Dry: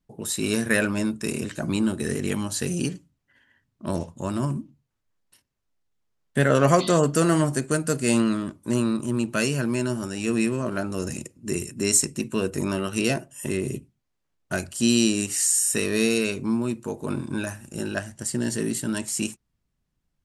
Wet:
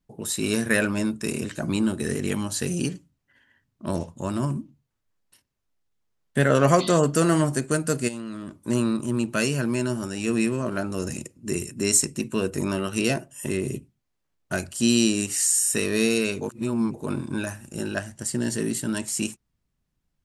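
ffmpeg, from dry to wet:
-filter_complex "[0:a]asplit=3[a][b][c];[a]afade=t=out:st=8.07:d=0.02[d];[b]acompressor=threshold=-30dB:ratio=10:attack=3.2:release=140:knee=1:detection=peak,afade=t=in:st=8.07:d=0.02,afade=t=out:st=8.57:d=0.02[e];[c]afade=t=in:st=8.57:d=0.02[f];[d][e][f]amix=inputs=3:normalize=0,asplit=3[g][h][i];[g]atrim=end=16.412[j];[h]atrim=start=16.408:end=16.942,asetpts=PTS-STARTPTS,areverse[k];[i]atrim=start=16.938[l];[j][k]acrossfade=d=0.004:c1=hsin:c2=hsin[m];[m][l]acrossfade=d=0.004:c1=hsin:c2=hsin"

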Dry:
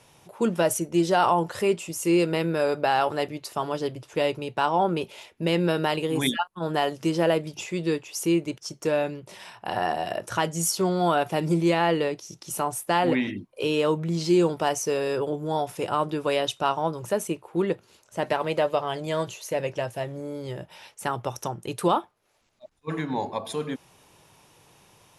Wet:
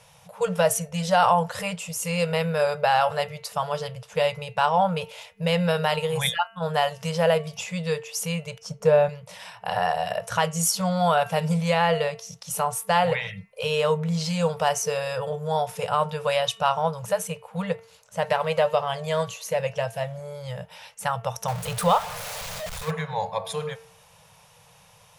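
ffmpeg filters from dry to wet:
-filter_complex "[0:a]asettb=1/sr,asplit=3[a][b][c];[a]atrim=end=8.624[d];[b]atrim=start=8.62:end=9.09,asetpts=PTS-STARTPTS,afade=t=in:d=0.004:c=qsin,afade=t=out:st=0.466:d=0.004:c=qsin,tiltshelf=f=1.4k:g=6.5[e];[c]atrim=start=9.086[f];[d][e]acrossfade=d=0.004:c1=hsin:c2=qsin[g];[g][f]acrossfade=d=0.004:c1=qsin:c2=hsin,asettb=1/sr,asplit=3[h][i][j];[h]atrim=end=21.484[k];[i]atrim=start=21.48:end=22.91,asetpts=PTS-STARTPTS,afade=t=in:d=0.004:c=qsin,afade=t=out:st=1.426:d=0.004:c=qsin,aeval=exprs='val(0)+0.5*0.0299*sgn(val(0))':c=same[l];[j]atrim=start=22.906[m];[k][l]acrossfade=d=0.004:c1=hsin:c2=qsin[n];[n][m]acrossfade=d=0.004:c1=qsin:c2=hsin,afftfilt=real='re*(1-between(b*sr/4096,200,440))':imag='im*(1-between(b*sr/4096,200,440))':win_size=4096:overlap=0.75,bandreject=f=226.6:t=h:w=4,bandreject=f=453.2:t=h:w=4,bandreject=f=679.8:t=h:w=4,bandreject=f=906.4:t=h:w=4,bandreject=f=1.133k:t=h:w=4,bandreject=f=1.3596k:t=h:w=4,bandreject=f=1.5862k:t=h:w=4,bandreject=f=1.8128k:t=h:w=4,bandreject=f=2.0394k:t=h:w=4,bandreject=f=2.266k:t=h:w=4,bandreject=f=2.4926k:t=h:w=4,bandreject=f=2.7192k:t=h:w=4,bandreject=f=2.9458k:t=h:w=4,volume=2.5dB"

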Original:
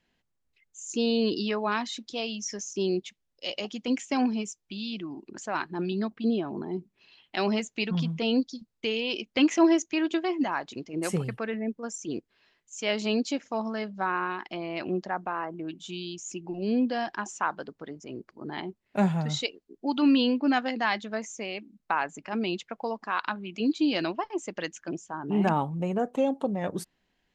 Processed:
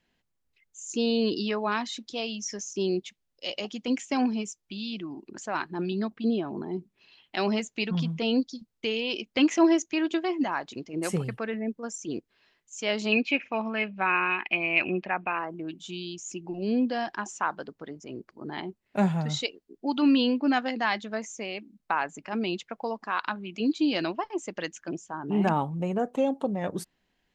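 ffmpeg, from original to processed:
-filter_complex "[0:a]asettb=1/sr,asplit=3[a][b][c];[a]atrim=end=13.124[d];[b]atrim=start=13.12:end=15.39,asetpts=PTS-STARTPTS,afade=t=in:d=0.004:c=qsin,afade=t=out:st=2.266:d=0.004:c=qsin,lowpass=f=2.5k:t=q:w=14[e];[c]atrim=start=15.386[f];[d][e]acrossfade=d=0.004:c1=hsin:c2=qsin[g];[g][f]acrossfade=d=0.004:c1=qsin:c2=hsin"

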